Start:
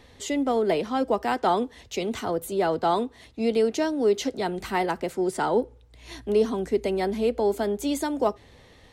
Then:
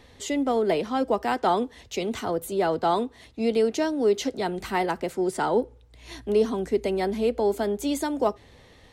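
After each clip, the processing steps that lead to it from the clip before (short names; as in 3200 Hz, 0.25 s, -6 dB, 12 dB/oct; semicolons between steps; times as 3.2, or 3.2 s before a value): nothing audible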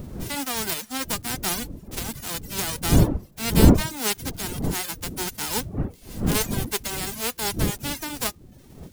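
spectral whitening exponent 0.1; wind noise 220 Hz -21 dBFS; reverb removal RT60 0.54 s; gain -4 dB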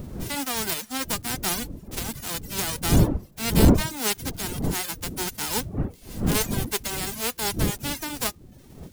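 soft clip -6.5 dBFS, distortion -17 dB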